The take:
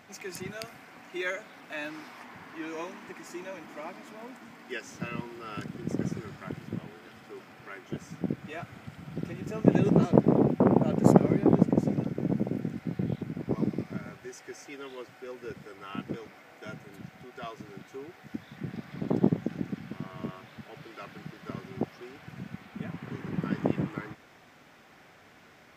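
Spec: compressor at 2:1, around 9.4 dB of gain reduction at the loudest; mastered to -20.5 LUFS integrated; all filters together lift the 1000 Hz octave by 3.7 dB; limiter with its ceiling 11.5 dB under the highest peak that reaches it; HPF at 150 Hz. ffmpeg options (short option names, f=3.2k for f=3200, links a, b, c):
-af "highpass=150,equalizer=f=1k:t=o:g=5,acompressor=threshold=-31dB:ratio=2,volume=18dB,alimiter=limit=-3dB:level=0:latency=1"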